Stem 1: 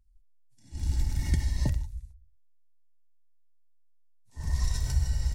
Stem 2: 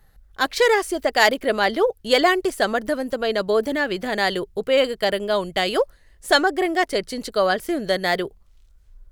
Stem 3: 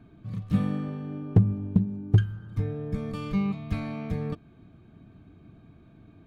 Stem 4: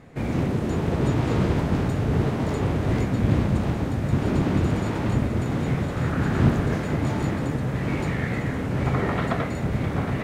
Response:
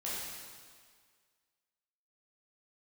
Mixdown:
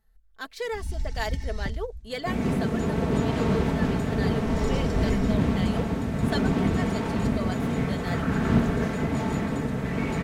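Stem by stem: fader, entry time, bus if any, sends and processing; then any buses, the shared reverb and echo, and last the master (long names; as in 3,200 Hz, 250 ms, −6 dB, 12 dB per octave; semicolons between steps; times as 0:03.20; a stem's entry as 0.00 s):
−4.0 dB, 0.00 s, no send, low-pass filter 5,900 Hz 12 dB per octave
−16.5 dB, 0.00 s, no send, no processing
−16.5 dB, 1.80 s, no send, no processing
−2.0 dB, 2.10 s, no send, no processing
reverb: not used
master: comb filter 4.5 ms, depth 50%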